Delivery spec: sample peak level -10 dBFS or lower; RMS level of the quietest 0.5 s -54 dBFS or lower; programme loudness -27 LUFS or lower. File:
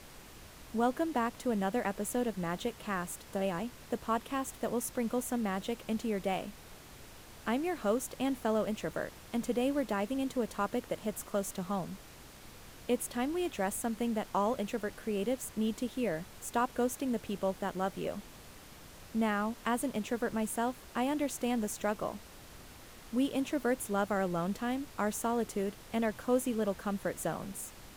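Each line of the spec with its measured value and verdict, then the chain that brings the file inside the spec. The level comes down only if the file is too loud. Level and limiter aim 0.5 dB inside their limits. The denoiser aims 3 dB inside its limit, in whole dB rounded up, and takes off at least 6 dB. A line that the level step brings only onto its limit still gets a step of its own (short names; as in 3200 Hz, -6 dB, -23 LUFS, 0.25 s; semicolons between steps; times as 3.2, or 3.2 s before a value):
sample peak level -17.5 dBFS: OK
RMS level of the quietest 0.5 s -52 dBFS: fail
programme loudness -34.5 LUFS: OK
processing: denoiser 6 dB, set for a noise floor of -52 dBFS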